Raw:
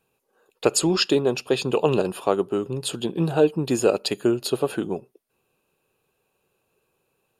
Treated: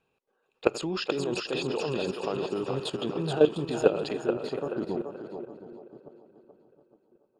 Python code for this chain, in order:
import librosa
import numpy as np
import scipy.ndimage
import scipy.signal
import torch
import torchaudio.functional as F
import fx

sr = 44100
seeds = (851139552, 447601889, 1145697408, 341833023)

p1 = fx.reverse_delay_fb(x, sr, ms=358, feedback_pct=56, wet_db=-11.0)
p2 = fx.peak_eq(p1, sr, hz=120.0, db=-3.0, octaves=0.36)
p3 = fx.level_steps(p2, sr, step_db=15)
p4 = fx.high_shelf(p3, sr, hz=7000.0, db=8.5)
p5 = p4 + fx.echo_thinned(p4, sr, ms=429, feedback_pct=46, hz=440.0, wet_db=-4, dry=0)
y = fx.filter_sweep_lowpass(p5, sr, from_hz=3500.0, to_hz=710.0, start_s=3.64, end_s=5.78, q=0.75)